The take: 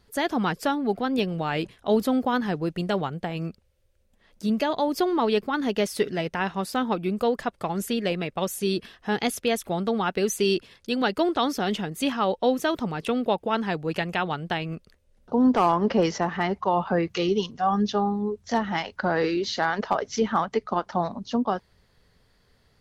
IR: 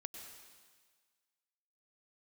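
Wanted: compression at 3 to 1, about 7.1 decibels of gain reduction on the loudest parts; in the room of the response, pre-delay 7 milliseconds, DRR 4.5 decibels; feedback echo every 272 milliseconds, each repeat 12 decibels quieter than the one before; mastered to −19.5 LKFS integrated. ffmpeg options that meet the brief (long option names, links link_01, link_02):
-filter_complex "[0:a]acompressor=threshold=-26dB:ratio=3,aecho=1:1:272|544|816:0.251|0.0628|0.0157,asplit=2[link_01][link_02];[1:a]atrim=start_sample=2205,adelay=7[link_03];[link_02][link_03]afir=irnorm=-1:irlink=0,volume=-1dB[link_04];[link_01][link_04]amix=inputs=2:normalize=0,volume=9.5dB"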